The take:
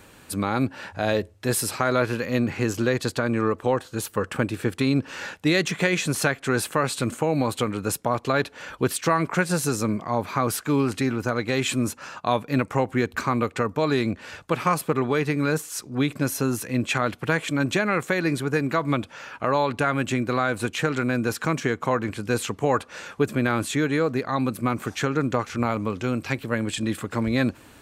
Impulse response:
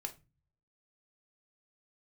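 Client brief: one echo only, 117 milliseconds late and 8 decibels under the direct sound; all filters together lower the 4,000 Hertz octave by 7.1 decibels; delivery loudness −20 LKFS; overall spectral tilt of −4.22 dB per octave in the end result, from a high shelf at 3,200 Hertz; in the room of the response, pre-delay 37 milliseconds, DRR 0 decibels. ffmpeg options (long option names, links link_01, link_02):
-filter_complex "[0:a]highshelf=frequency=3200:gain=-7.5,equalizer=frequency=4000:width_type=o:gain=-3.5,aecho=1:1:117:0.398,asplit=2[link_01][link_02];[1:a]atrim=start_sample=2205,adelay=37[link_03];[link_02][link_03]afir=irnorm=-1:irlink=0,volume=2dB[link_04];[link_01][link_04]amix=inputs=2:normalize=0,volume=2dB"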